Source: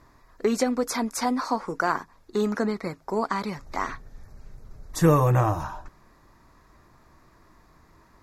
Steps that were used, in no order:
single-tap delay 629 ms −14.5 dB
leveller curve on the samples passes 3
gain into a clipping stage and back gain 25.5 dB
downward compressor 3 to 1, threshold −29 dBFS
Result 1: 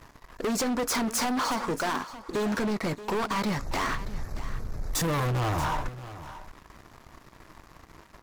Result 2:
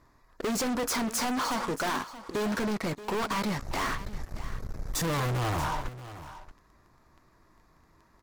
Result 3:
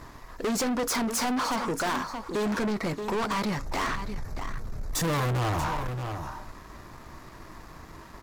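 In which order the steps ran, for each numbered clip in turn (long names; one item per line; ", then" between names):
downward compressor, then leveller curve on the samples, then gain into a clipping stage and back, then single-tap delay
leveller curve on the samples, then gain into a clipping stage and back, then downward compressor, then single-tap delay
gain into a clipping stage and back, then downward compressor, then single-tap delay, then leveller curve on the samples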